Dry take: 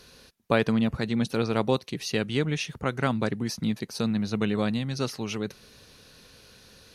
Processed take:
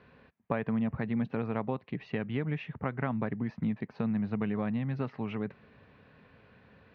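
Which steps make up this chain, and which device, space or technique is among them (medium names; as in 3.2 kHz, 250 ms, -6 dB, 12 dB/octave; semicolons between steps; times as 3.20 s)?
bass amplifier (compression 4:1, threshold -26 dBFS, peak gain reduction 8 dB; cabinet simulation 82–2100 Hz, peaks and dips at 350 Hz -6 dB, 500 Hz -4 dB, 1.4 kHz -5 dB)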